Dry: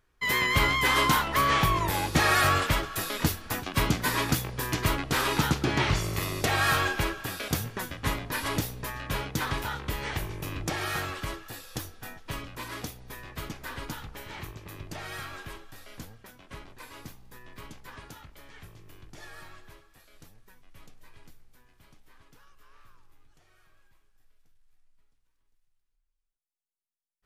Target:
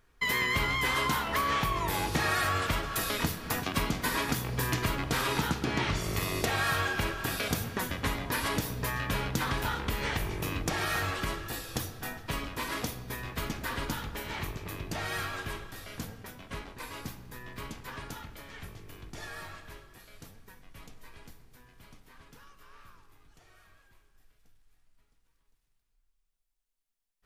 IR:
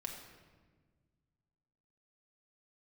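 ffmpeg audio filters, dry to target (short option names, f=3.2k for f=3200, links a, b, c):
-filter_complex "[0:a]acompressor=threshold=-32dB:ratio=4,asplit=2[a][b];[1:a]atrim=start_sample=2205[c];[b][c]afir=irnorm=-1:irlink=0,volume=-0.5dB[d];[a][d]amix=inputs=2:normalize=0"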